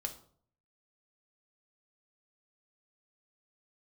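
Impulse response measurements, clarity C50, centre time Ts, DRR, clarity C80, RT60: 12.0 dB, 9 ms, 4.5 dB, 16.0 dB, 0.55 s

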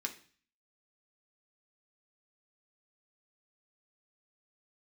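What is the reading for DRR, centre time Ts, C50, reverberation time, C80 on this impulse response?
2.0 dB, 9 ms, 13.0 dB, 0.45 s, 17.0 dB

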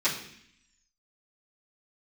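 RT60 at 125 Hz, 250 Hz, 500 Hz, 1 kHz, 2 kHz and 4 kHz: 0.85, 0.95, 0.65, 0.65, 0.90, 0.85 seconds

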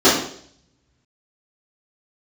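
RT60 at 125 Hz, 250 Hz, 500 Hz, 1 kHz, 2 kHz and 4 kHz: 1.9, 0.65, 0.65, 0.55, 0.55, 0.65 seconds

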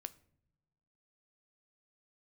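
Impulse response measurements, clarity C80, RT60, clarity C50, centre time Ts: 23.5 dB, non-exponential decay, 19.5 dB, 2 ms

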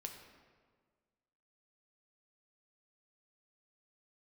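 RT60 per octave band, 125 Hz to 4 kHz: 1.8, 1.8, 1.7, 1.6, 1.3, 1.0 seconds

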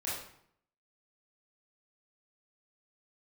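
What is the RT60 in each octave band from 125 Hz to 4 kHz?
0.80, 0.75, 0.65, 0.65, 0.60, 0.50 seconds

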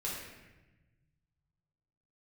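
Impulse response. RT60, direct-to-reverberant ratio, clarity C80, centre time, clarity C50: 1.1 s, −6.0 dB, 3.0 dB, 73 ms, 0.5 dB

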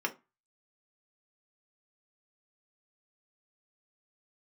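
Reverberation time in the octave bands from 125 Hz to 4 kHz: 0.35, 0.30, 0.20, 0.30, 0.25, 0.15 seconds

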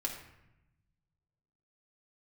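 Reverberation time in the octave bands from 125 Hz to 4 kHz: 2.0, 1.4, 0.90, 0.85, 0.90, 0.60 seconds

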